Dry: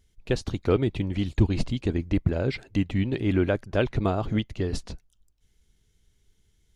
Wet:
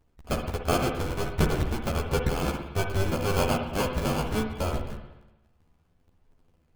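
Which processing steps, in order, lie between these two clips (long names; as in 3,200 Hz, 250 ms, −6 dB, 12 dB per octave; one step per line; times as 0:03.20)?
sub-harmonics by changed cycles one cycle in 2, inverted
sample-rate reduction 1,900 Hz, jitter 0%
multi-voice chorus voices 2, 0.32 Hz, delay 13 ms, depth 1.3 ms
spring reverb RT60 1 s, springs 55/59 ms, chirp 65 ms, DRR 4.5 dB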